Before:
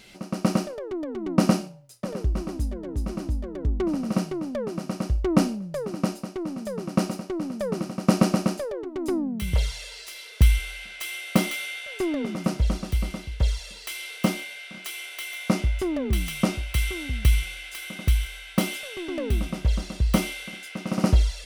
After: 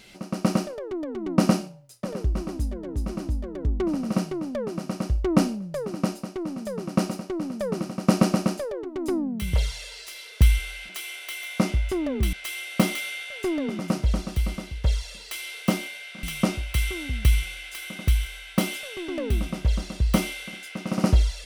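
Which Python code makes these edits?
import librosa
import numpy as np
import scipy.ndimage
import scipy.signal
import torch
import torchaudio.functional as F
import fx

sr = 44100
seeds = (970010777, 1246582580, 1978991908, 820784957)

y = fx.edit(x, sr, fx.move(start_s=14.79, length_s=1.44, to_s=10.89), tone=tone)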